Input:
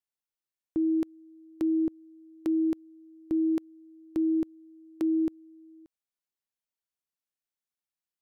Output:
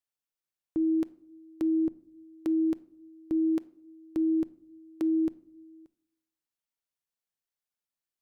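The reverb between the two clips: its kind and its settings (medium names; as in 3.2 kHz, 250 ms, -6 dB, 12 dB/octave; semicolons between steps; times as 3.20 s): simulated room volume 1000 m³, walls furnished, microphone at 0.34 m; trim -1 dB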